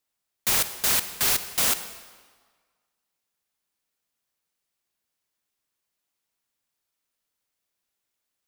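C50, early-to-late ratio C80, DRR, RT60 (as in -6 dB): 11.5 dB, 12.5 dB, 11.0 dB, 1.6 s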